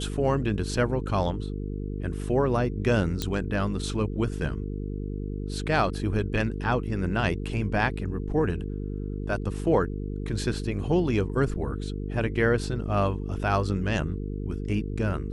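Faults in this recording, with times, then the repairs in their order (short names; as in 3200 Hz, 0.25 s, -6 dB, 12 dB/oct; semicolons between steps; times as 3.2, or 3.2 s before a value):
buzz 50 Hz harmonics 9 -32 dBFS
3.22 pop -13 dBFS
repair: de-click; de-hum 50 Hz, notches 9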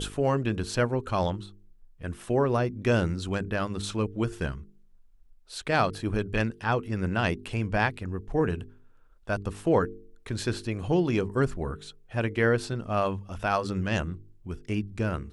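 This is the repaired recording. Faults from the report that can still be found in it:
none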